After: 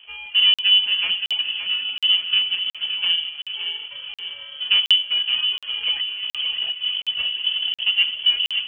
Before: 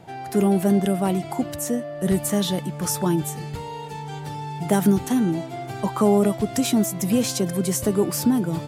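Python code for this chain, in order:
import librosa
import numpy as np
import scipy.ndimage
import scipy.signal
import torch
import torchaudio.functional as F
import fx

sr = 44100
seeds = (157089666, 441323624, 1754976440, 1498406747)

y = scipy.signal.medfilt(x, 41)
y = fx.dereverb_blind(y, sr, rt60_s=1.0)
y = fx.room_shoebox(y, sr, seeds[0], volume_m3=2300.0, walls='furnished', distance_m=1.2)
y = fx.over_compress(y, sr, threshold_db=-24.0, ratio=-0.5, at=(5.21, 7.83), fade=0.02)
y = fx.freq_invert(y, sr, carrier_hz=3200)
y = fx.echo_feedback(y, sr, ms=568, feedback_pct=54, wet_db=-8.0)
y = fx.buffer_crackle(y, sr, first_s=0.54, period_s=0.72, block=2048, kind='zero')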